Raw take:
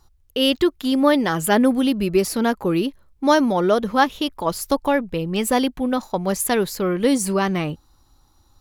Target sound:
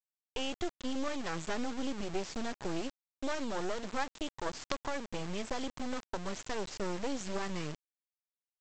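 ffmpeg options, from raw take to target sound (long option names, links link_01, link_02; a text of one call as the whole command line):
ffmpeg -i in.wav -af "acompressor=threshold=-22dB:ratio=3,aresample=16000,acrusher=bits=3:dc=4:mix=0:aa=0.000001,aresample=44100,volume=-7.5dB" out.wav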